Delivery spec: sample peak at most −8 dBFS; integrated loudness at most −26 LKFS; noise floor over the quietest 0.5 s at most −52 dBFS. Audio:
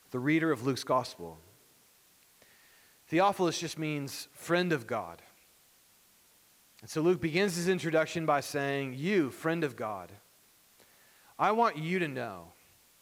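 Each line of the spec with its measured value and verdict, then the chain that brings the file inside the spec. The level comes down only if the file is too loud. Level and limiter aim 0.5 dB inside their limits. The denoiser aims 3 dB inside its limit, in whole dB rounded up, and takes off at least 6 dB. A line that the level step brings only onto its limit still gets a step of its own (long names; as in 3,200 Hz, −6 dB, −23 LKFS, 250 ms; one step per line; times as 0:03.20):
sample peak −14.5 dBFS: in spec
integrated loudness −31.0 LKFS: in spec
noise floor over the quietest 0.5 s −64 dBFS: in spec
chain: no processing needed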